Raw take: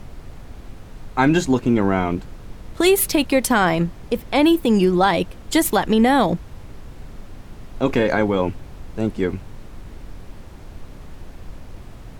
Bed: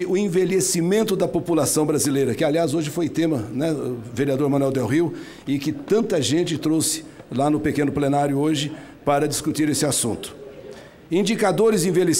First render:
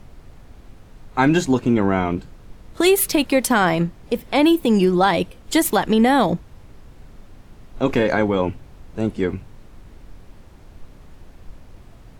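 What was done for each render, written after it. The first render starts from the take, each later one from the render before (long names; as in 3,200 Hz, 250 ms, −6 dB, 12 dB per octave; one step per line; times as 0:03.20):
noise reduction from a noise print 6 dB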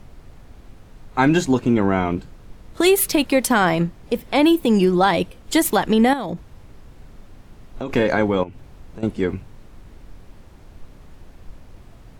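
0:06.13–0:07.93: downward compressor 10 to 1, threshold −22 dBFS
0:08.43–0:09.03: downward compressor 5 to 1, threshold −32 dBFS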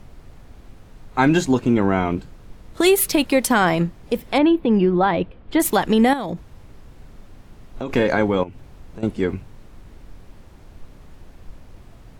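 0:04.38–0:05.60: high-frequency loss of the air 390 metres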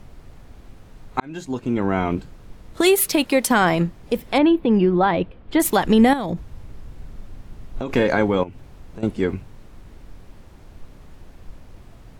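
0:01.20–0:02.13: fade in
0:02.82–0:03.51: low-shelf EQ 110 Hz −9 dB
0:05.84–0:07.82: low-shelf EQ 150 Hz +7 dB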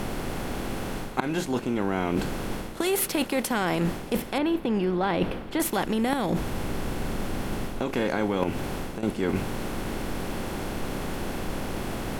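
compressor on every frequency bin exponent 0.6
reversed playback
downward compressor 6 to 1, threshold −23 dBFS, peak gain reduction 14 dB
reversed playback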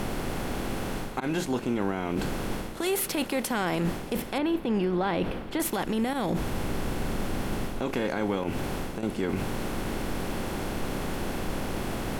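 brickwall limiter −18.5 dBFS, peak gain reduction 10.5 dB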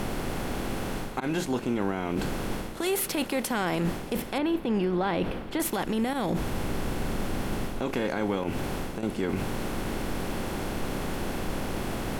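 no processing that can be heard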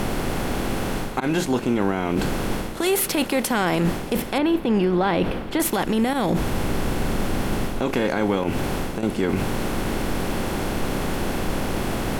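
level +6.5 dB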